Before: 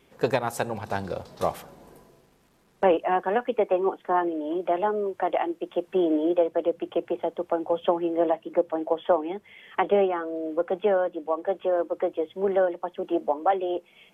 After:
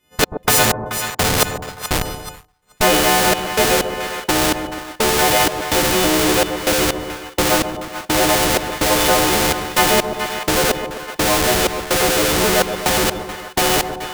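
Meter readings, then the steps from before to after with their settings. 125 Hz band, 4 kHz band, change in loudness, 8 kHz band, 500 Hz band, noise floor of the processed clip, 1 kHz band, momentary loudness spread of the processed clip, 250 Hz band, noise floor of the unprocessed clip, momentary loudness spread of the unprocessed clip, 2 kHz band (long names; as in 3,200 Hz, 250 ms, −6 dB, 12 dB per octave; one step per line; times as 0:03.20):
+16.0 dB, +26.5 dB, +10.0 dB, can't be measured, +4.5 dB, −46 dBFS, +8.5 dB, 10 LU, +7.0 dB, −62 dBFS, 7 LU, +18.5 dB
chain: every partial snapped to a pitch grid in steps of 3 semitones
feedback delay network reverb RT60 2.1 s, low-frequency decay 0.85×, high-frequency decay 0.9×, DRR 6.5 dB
in parallel at −5 dB: comparator with hysteresis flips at −36.5 dBFS
on the sum: gate pattern "x.x..x..xx.xx" 63 BPM −60 dB
on a send: echo with a time of its own for lows and highs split 920 Hz, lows 129 ms, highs 430 ms, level −15 dB
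on the sum: downward expander −39 dBFS
low-shelf EQ 190 Hz +7 dB
every bin compressed towards the loudest bin 2 to 1
level +3.5 dB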